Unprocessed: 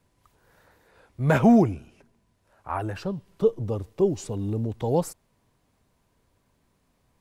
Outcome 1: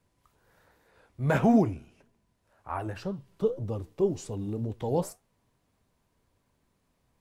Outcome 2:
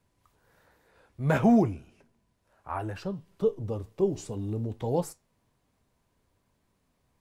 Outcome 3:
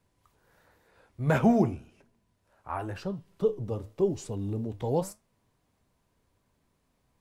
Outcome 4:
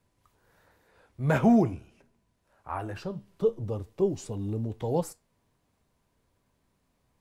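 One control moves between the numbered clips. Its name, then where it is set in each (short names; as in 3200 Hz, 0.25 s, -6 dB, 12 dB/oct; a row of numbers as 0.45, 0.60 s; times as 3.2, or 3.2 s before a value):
flange, rate: 1.9, 0.61, 0.93, 0.23 Hz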